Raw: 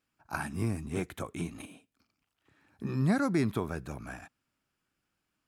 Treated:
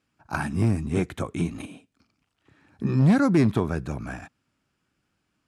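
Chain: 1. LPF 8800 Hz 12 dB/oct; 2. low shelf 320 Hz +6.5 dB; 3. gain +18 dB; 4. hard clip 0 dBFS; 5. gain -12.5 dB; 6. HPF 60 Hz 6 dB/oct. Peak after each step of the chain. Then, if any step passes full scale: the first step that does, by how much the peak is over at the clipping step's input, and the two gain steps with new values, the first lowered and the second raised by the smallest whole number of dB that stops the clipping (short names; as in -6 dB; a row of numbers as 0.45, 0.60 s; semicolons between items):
-17.0, -13.0, +5.0, 0.0, -12.5, -11.0 dBFS; step 3, 5.0 dB; step 3 +13 dB, step 5 -7.5 dB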